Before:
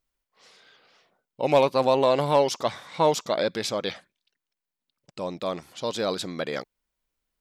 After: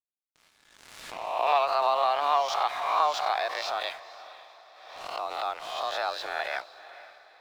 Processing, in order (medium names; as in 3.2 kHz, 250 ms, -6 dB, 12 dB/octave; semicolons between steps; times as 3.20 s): reverse spectral sustain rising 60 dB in 0.57 s; high-pass 700 Hz 12 dB/octave; in parallel at +1.5 dB: compression, threshold -33 dBFS, peak gain reduction 15 dB; on the sum: frequency shift +140 Hz; Gaussian low-pass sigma 2 samples; crossover distortion -48.5 dBFS; on a send: echo that smears into a reverb 497 ms, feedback 41%, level -15.5 dB; on the sum: swell ahead of each attack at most 46 dB/s; trim -3 dB